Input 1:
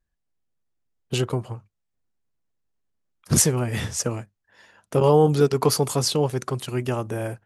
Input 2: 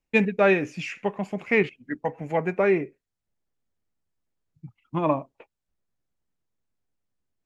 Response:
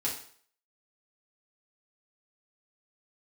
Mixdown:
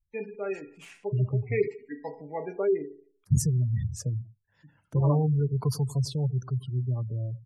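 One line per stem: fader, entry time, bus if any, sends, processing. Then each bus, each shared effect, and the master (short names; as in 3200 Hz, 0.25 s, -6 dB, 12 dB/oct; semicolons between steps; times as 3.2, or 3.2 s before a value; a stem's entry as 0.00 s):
-13.5 dB, 0.00 s, no send, echo send -17 dB, resonant low shelf 190 Hz +12.5 dB, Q 1.5
0.68 s -21.5 dB -> 1.32 s -14.5 dB, 0.00 s, send -5.5 dB, no echo send, HPF 140 Hz 6 dB/oct; small resonant body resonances 410/3100 Hz, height 10 dB, ringing for 50 ms; noise-modulated delay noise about 4600 Hz, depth 0.037 ms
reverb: on, RT60 0.55 s, pre-delay 4 ms
echo: echo 95 ms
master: spectral gate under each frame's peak -25 dB strong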